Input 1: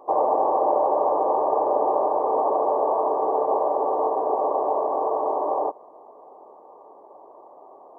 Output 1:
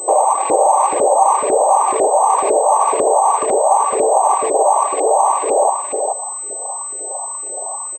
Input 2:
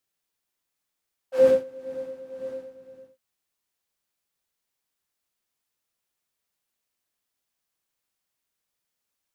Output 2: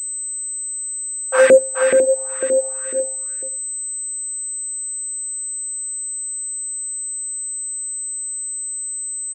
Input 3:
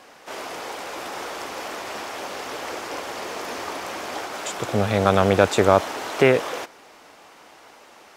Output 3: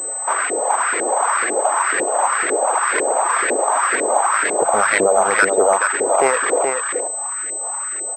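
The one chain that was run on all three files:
median filter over 15 samples; LFO band-pass saw up 2 Hz 350–2000 Hz; in parallel at +1.5 dB: compressor, threshold -36 dBFS; on the sum: limiter -18.5 dBFS; reverb removal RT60 0.95 s; HPF 66 Hz; tilt +3 dB/oct; notches 60/120/180 Hz; on a send: echo 0.426 s -5 dB; on the sum: pulse-width modulation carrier 8100 Hz; normalise peaks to -2 dBFS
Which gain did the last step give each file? +16.0, +20.0, +16.5 dB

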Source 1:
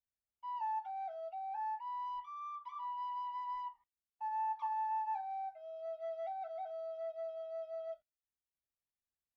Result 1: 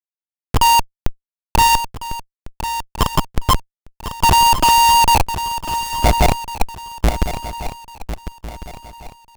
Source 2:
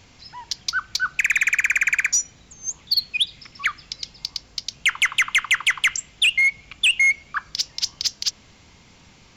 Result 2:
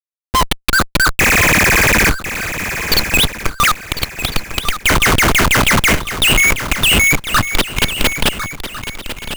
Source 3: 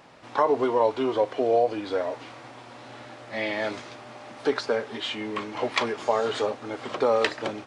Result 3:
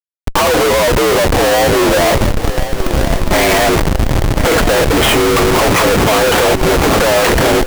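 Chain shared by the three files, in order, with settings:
mistuned SSB +57 Hz 220–3100 Hz; Schmitt trigger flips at -36.5 dBFS; swung echo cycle 1.401 s, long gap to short 3:1, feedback 31%, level -11 dB; normalise peaks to -3 dBFS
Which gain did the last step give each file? +31.0, +14.0, +16.5 dB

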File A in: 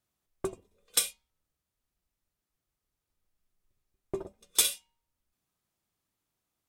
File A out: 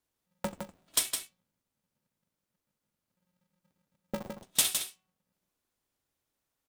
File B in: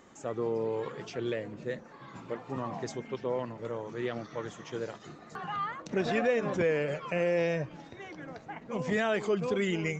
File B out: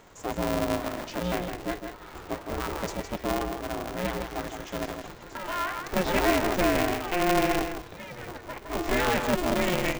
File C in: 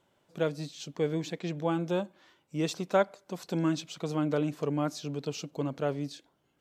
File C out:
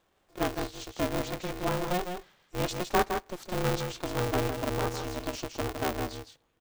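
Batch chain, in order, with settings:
on a send: echo 0.161 s -6.5 dB; on the sum: polarity switched at an audio rate 180 Hz; normalise peaks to -12 dBFS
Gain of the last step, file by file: -1.5, +3.5, -0.5 dB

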